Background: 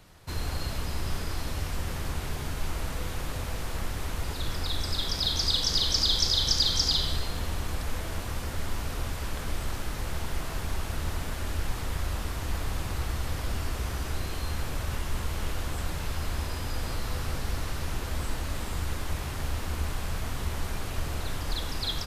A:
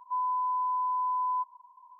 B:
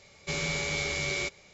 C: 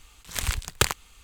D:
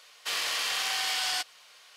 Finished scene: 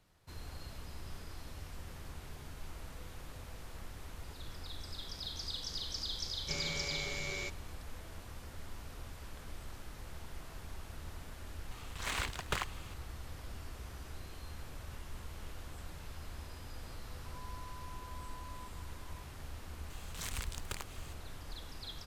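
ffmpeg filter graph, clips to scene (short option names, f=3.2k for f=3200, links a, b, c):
-filter_complex "[3:a]asplit=2[a][b];[0:a]volume=-15dB[c];[a]asplit=2[d][e];[e]highpass=f=720:p=1,volume=30dB,asoftclip=type=tanh:threshold=-2.5dB[f];[d][f]amix=inputs=2:normalize=0,lowpass=f=1.7k:p=1,volume=-6dB[g];[1:a]acompressor=threshold=-47dB:ratio=6:attack=3.2:release=140:knee=1:detection=peak[h];[b]acompressor=threshold=-29dB:ratio=8:attack=0.16:release=185:knee=1:detection=peak[i];[2:a]atrim=end=1.53,asetpts=PTS-STARTPTS,volume=-9dB,afade=t=in:d=0.004:c=hsin,afade=t=out:st=1.526:d=0.004:c=hsin,adelay=6210[j];[g]atrim=end=1.23,asetpts=PTS-STARTPTS,volume=-16.5dB,afade=t=in:d=0.004:c=hsin,afade=t=out:st=1.226:d=0.004:c=hsin,adelay=11710[k];[h]atrim=end=1.99,asetpts=PTS-STARTPTS,volume=-6dB,afade=t=in:d=0.004:c=hsin,afade=t=out:st=1.986:d=0.004:c=hsin,adelay=17250[l];[i]atrim=end=1.23,asetpts=PTS-STARTPTS,volume=-0.5dB,afade=t=in:d=0.004:c=hsin,afade=t=out:st=1.226:d=0.004:c=hsin,adelay=19900[m];[c][j][k][l][m]amix=inputs=5:normalize=0"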